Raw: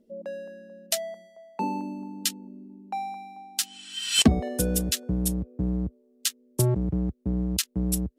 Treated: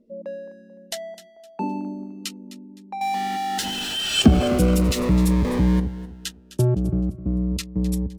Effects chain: 3.01–5.80 s: jump at every zero crossing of -21 dBFS; low-pass 2.1 kHz 6 dB/octave; feedback delay 257 ms, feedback 31%, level -15 dB; Shepard-style phaser falling 0.4 Hz; trim +4 dB

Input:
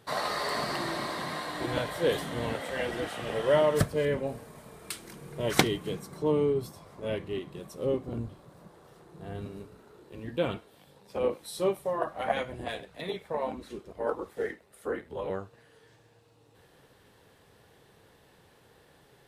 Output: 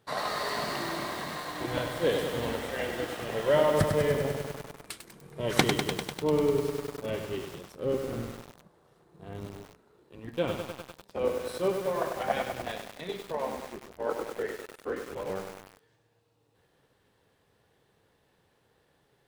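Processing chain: companding laws mixed up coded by A; treble shelf 7.6 kHz -4 dB; bit-crushed delay 99 ms, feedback 80%, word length 7-bit, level -5.5 dB

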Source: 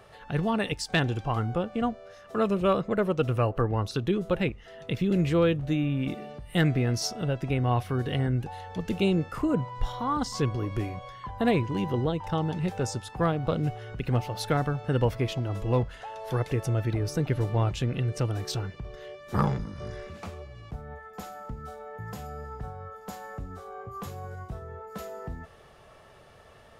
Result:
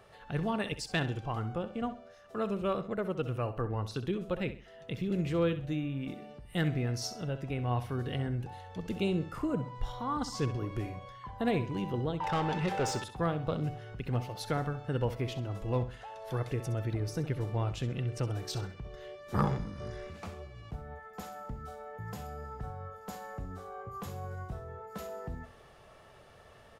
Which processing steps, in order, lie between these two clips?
gain riding within 4 dB 2 s; 12.20–13.04 s: overdrive pedal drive 22 dB, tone 2.9 kHz, clips at -14.5 dBFS; on a send: feedback delay 65 ms, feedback 32%, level -12.5 dB; on the sum: trim -7 dB

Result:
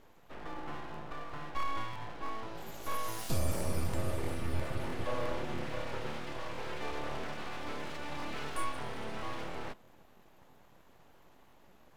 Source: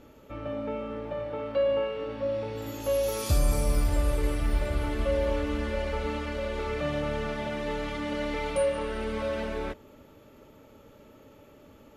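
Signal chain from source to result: full-wave rectifier; crackling interface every 0.33 s, samples 1024, repeat, from 0.92 s; trim -5.5 dB

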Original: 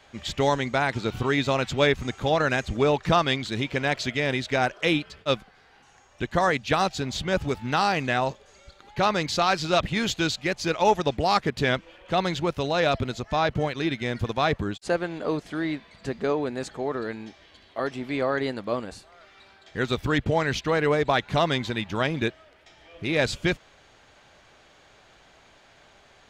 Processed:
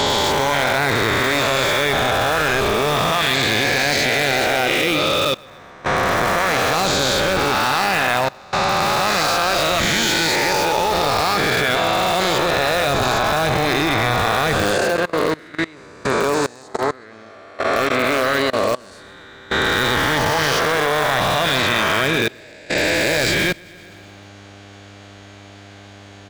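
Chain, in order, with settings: reverse spectral sustain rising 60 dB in 2.87 s; tilt shelf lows -3 dB, about 780 Hz; in parallel at -8.5 dB: integer overflow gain 14.5 dB; on the sum: mains buzz 100 Hz, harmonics 8, -44 dBFS -5 dB/octave; on a send: feedback delay 127 ms, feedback 53%, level -11 dB; on the sum: level held to a coarse grid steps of 23 dB; trim +5 dB

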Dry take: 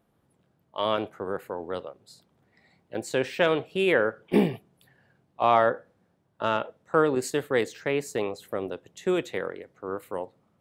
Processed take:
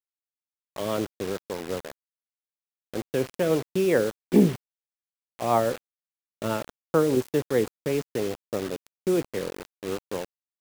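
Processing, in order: rotary cabinet horn 5 Hz; tilt shelf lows +7 dB, about 690 Hz; bit crusher 6-bit

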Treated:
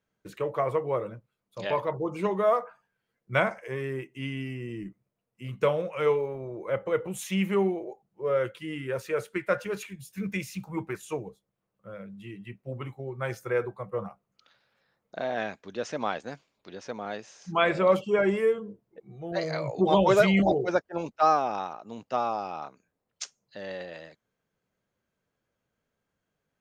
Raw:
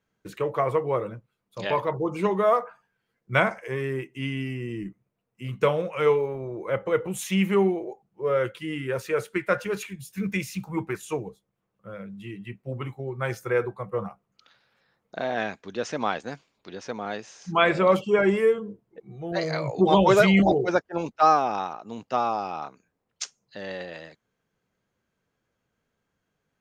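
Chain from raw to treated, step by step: peaking EQ 590 Hz +3.5 dB 0.34 oct; trim -4 dB

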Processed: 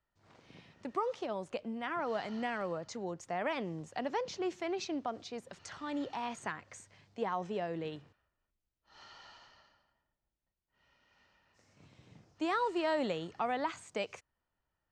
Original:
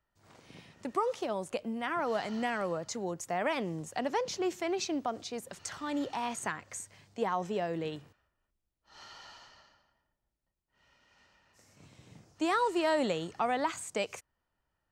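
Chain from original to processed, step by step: low-pass 5.2 kHz 12 dB/octave; trim -3.5 dB

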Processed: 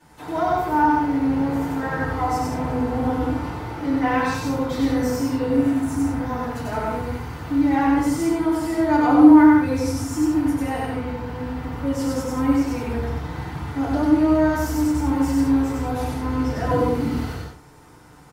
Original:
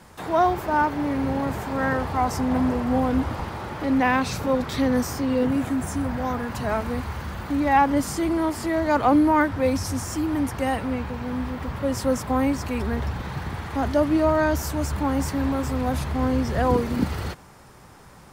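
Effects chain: loudspeakers at several distances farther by 33 m -1 dB, 57 m -6 dB; FDN reverb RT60 0.4 s, low-frequency decay 1.25×, high-frequency decay 0.8×, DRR -9.5 dB; trim -13.5 dB

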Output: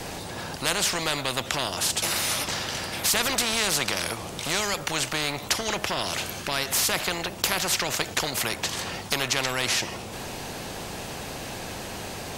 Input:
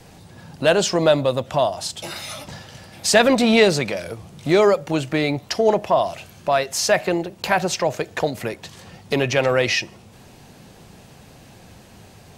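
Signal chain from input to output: spectrum-flattening compressor 4:1; trim -4 dB

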